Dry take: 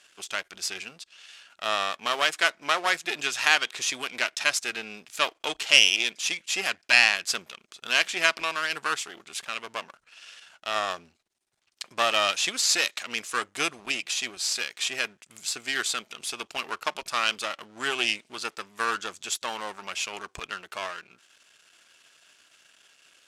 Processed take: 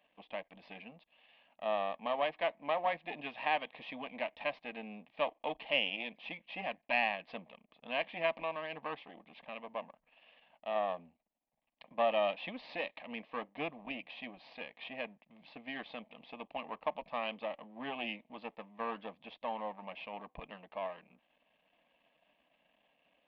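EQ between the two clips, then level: Gaussian blur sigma 4.2 samples; fixed phaser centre 380 Hz, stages 6; 0.0 dB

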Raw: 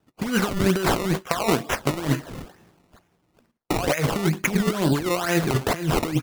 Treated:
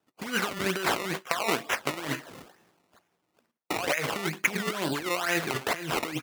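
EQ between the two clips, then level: HPF 460 Hz 6 dB/oct; dynamic EQ 2200 Hz, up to +5 dB, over -40 dBFS, Q 0.96; -4.5 dB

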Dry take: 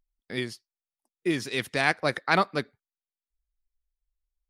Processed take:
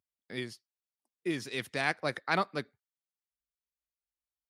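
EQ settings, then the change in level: HPF 74 Hz 24 dB/oct; -6.5 dB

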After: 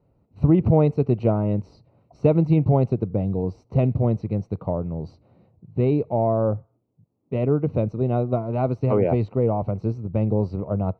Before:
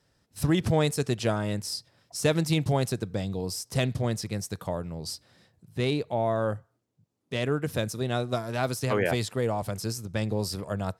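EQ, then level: running mean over 26 samples; air absorption 240 m; +8.0 dB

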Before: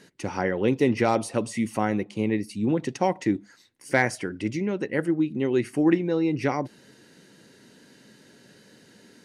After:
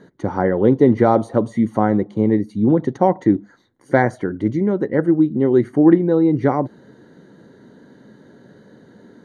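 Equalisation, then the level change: running mean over 17 samples; +9.0 dB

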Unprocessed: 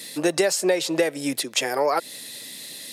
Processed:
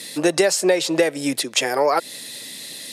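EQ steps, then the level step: LPF 12000 Hz 12 dB/oct; +3.5 dB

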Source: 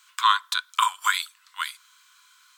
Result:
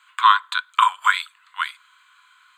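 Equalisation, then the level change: running mean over 8 samples; notches 50/100/150/200/250 Hz; +6.5 dB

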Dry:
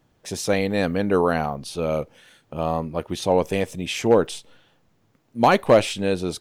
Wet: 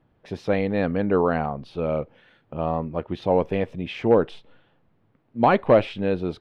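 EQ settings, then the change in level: air absorption 380 m; 0.0 dB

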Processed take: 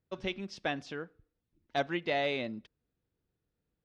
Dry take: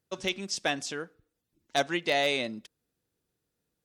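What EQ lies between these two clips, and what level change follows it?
air absorption 310 m; low shelf 94 Hz +10.5 dB; high shelf 7100 Hz +10.5 dB; -3.0 dB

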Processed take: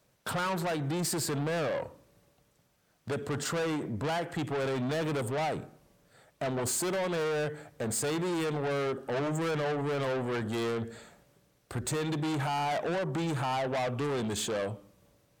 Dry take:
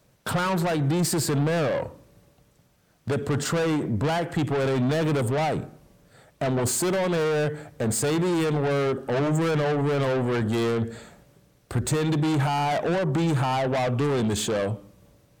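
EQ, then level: low shelf 300 Hz -6 dB; -5.0 dB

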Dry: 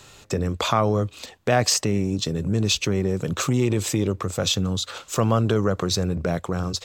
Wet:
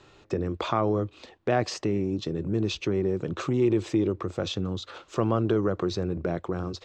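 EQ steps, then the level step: air absorption 150 m; bell 340 Hz +10 dB 0.47 oct; bell 880 Hz +2.5 dB 1.9 oct; -7.0 dB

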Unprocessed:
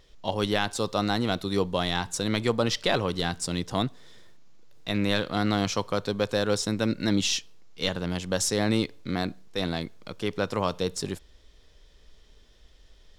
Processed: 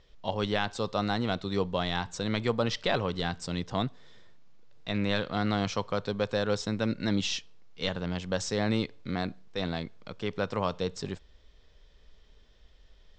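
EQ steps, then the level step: brick-wall FIR low-pass 8600 Hz; air absorption 100 m; bell 320 Hz -4 dB 0.5 oct; -2.0 dB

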